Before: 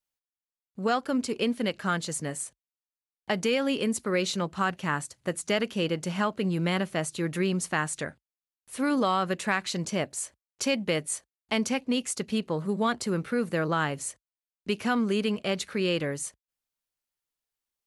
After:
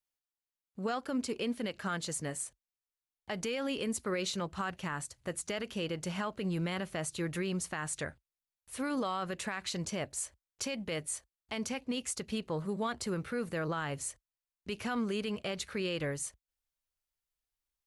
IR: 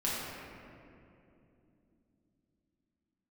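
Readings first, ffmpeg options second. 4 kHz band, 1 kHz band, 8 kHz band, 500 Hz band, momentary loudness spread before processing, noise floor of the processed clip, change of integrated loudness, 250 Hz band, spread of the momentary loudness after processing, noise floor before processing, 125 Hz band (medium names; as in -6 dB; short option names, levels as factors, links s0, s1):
-7.0 dB, -8.5 dB, -4.5 dB, -8.0 dB, 8 LU, under -85 dBFS, -7.5 dB, -8.0 dB, 6 LU, under -85 dBFS, -6.5 dB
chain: -af "asubboost=boost=5:cutoff=83,alimiter=limit=0.0794:level=0:latency=1:release=61,volume=0.668"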